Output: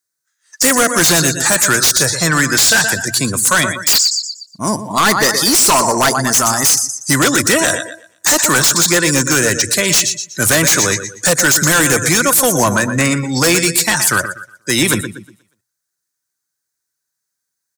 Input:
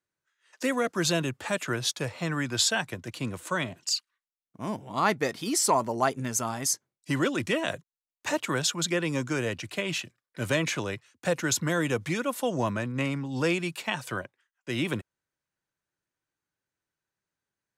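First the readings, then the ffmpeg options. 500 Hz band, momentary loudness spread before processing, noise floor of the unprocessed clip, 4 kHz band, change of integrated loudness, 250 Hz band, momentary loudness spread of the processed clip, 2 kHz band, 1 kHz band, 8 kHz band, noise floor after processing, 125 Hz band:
+12.0 dB, 10 LU, under -85 dBFS, +17.0 dB, +17.0 dB, +12.5 dB, 7 LU, +17.5 dB, +14.0 dB, +21.0 dB, -77 dBFS, +12.0 dB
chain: -filter_complex "[0:a]deesser=0.6,aexciter=amount=13.1:drive=1.3:freq=4200,equalizer=f=1600:t=o:w=1.2:g=8.5,asplit=2[s0][s1];[s1]aecho=0:1:120|240|360|480|600:0.282|0.144|0.0733|0.0374|0.0191[s2];[s0][s2]amix=inputs=2:normalize=0,afftdn=nr=18:nf=-36,highshelf=f=11000:g=-3.5,bandreject=f=60:t=h:w=6,bandreject=f=120:t=h:w=6,asplit=2[s3][s4];[s4]aeval=exprs='0.75*sin(PI/2*6.31*val(0)/0.75)':c=same,volume=0.473[s5];[s3][s5]amix=inputs=2:normalize=0,volume=0.891"

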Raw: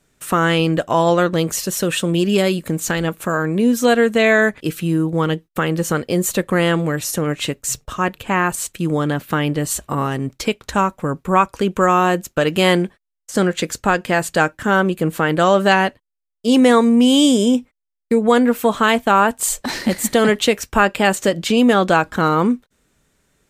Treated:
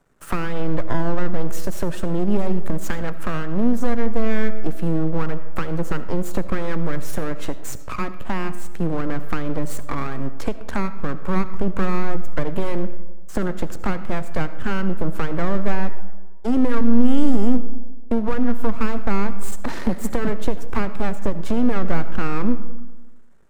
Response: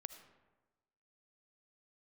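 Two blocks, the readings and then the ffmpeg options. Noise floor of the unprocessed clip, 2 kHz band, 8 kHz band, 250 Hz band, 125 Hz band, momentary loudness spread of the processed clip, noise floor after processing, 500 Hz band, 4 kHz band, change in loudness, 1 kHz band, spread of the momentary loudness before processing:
-78 dBFS, -13.0 dB, -16.0 dB, -5.5 dB, -4.5 dB, 8 LU, -26 dBFS, -10.0 dB, -18.0 dB, -8.5 dB, -11.5 dB, 8 LU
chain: -filter_complex "[0:a]highshelf=f=1900:t=q:w=1.5:g=-10.5,aeval=exprs='max(val(0),0)':c=same,acrossover=split=270[s0][s1];[s1]acompressor=threshold=0.0251:ratio=5[s2];[s0][s2]amix=inputs=2:normalize=0,asplit=2[s3][s4];[1:a]atrim=start_sample=2205[s5];[s4][s5]afir=irnorm=-1:irlink=0,volume=3.76[s6];[s3][s6]amix=inputs=2:normalize=0,volume=0.501"

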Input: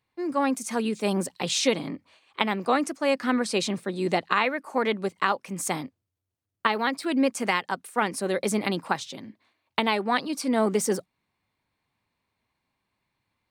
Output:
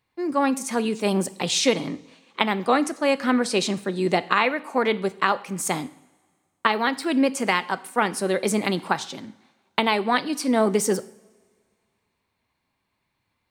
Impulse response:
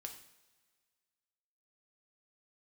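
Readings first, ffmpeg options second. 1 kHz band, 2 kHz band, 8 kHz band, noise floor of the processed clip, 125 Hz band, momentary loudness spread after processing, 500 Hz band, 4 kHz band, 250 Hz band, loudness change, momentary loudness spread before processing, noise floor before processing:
+3.0 dB, +3.0 dB, +3.0 dB, -76 dBFS, +3.0 dB, 7 LU, +3.0 dB, +3.0 dB, +3.0 dB, +3.0 dB, 7 LU, -82 dBFS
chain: -filter_complex "[0:a]asplit=2[s0][s1];[1:a]atrim=start_sample=2205[s2];[s1][s2]afir=irnorm=-1:irlink=0,volume=0.794[s3];[s0][s3]amix=inputs=2:normalize=0"

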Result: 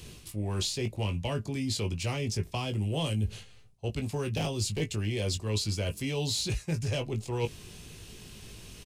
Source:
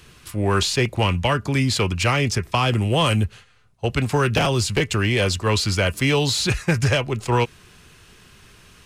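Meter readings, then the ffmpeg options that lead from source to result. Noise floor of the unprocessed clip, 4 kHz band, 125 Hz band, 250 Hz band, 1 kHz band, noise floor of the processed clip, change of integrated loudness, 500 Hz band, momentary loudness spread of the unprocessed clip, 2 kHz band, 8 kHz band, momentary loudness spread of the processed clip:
-51 dBFS, -11.0 dB, -9.5 dB, -10.5 dB, -17.0 dB, -52 dBFS, -11.0 dB, -12.0 dB, 4 LU, -17.0 dB, -8.5 dB, 17 LU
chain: -filter_complex "[0:a]equalizer=f=1400:t=o:w=1.3:g=-13.5,areverse,acompressor=threshold=0.0224:ratio=6,areverse,asplit=2[s0][s1];[s1]adelay=19,volume=0.447[s2];[s0][s2]amix=inputs=2:normalize=0,volume=1.41"

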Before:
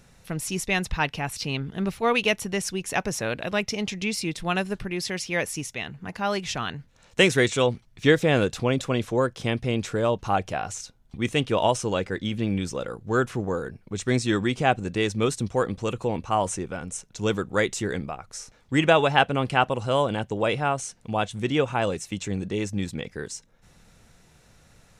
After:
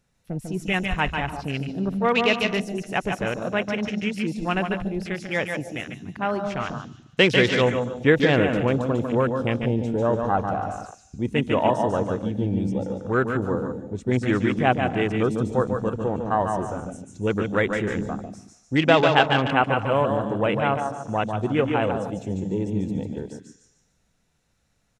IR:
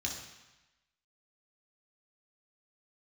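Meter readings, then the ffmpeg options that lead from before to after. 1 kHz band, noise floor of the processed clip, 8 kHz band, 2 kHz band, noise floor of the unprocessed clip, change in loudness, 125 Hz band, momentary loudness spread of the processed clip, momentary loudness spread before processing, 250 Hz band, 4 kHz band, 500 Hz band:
+2.0 dB, -67 dBFS, -12.0 dB, +2.0 dB, -58 dBFS, +2.0 dB, +2.5 dB, 12 LU, 12 LU, +3.5 dB, 0.0 dB, +2.0 dB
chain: -filter_complex "[0:a]aecho=1:1:147|294|441|588:0.531|0.181|0.0614|0.0209,asplit=2[s0][s1];[1:a]atrim=start_sample=2205,highshelf=f=4500:g=5.5,adelay=142[s2];[s1][s2]afir=irnorm=-1:irlink=0,volume=0.237[s3];[s0][s3]amix=inputs=2:normalize=0,afwtdn=0.0316,volume=1.12"

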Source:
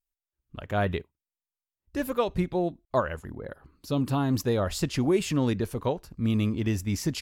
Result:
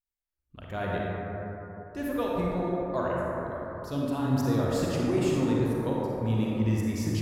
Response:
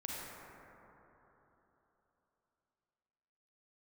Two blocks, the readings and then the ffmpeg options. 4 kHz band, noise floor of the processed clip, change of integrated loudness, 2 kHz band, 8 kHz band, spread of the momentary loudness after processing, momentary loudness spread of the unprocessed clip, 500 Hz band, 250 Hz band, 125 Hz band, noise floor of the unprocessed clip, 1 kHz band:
-5.0 dB, under -85 dBFS, -1.0 dB, -1.5 dB, -5.0 dB, 10 LU, 13 LU, -0.5 dB, 0.0 dB, 0.0 dB, under -85 dBFS, -0.5 dB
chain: -filter_complex "[1:a]atrim=start_sample=2205[s0];[0:a][s0]afir=irnorm=-1:irlink=0,volume=0.75"

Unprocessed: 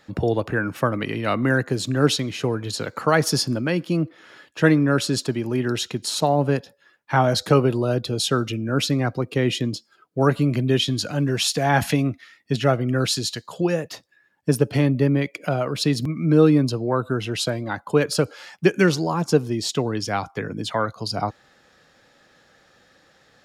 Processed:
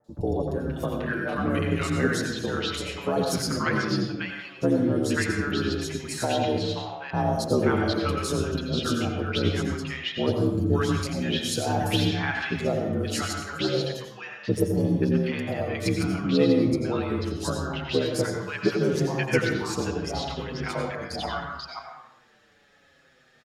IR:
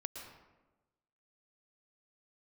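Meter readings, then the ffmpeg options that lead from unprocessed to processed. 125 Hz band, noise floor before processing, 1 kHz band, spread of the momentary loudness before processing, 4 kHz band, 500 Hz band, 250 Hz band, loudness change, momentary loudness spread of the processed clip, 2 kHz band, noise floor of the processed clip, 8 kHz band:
-5.0 dB, -60 dBFS, -5.0 dB, 8 LU, -4.5 dB, -4.0 dB, -3.5 dB, -4.5 dB, 8 LU, -2.5 dB, -59 dBFS, -5.5 dB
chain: -filter_complex "[0:a]aeval=exprs='val(0)*sin(2*PI*35*n/s)':c=same,equalizer=f=2700:w=1:g=3.5,bandreject=f=50:t=h:w=6,bandreject=f=100:t=h:w=6,acrossover=split=950|4700[s0][s1][s2];[s2]adelay=40[s3];[s1]adelay=530[s4];[s0][s4][s3]amix=inputs=3:normalize=0[s5];[1:a]atrim=start_sample=2205,asetrate=57330,aresample=44100[s6];[s5][s6]afir=irnorm=-1:irlink=0,asplit=2[s7][s8];[s8]adelay=6.3,afreqshift=-0.76[s9];[s7][s9]amix=inputs=2:normalize=1,volume=2"

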